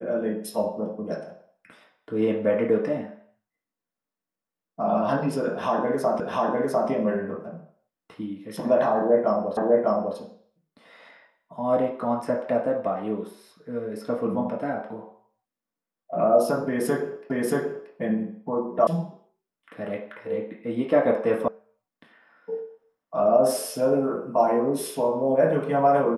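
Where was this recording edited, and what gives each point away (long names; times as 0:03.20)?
0:06.20: the same again, the last 0.7 s
0:09.57: the same again, the last 0.6 s
0:17.30: the same again, the last 0.63 s
0:18.87: cut off before it has died away
0:21.48: cut off before it has died away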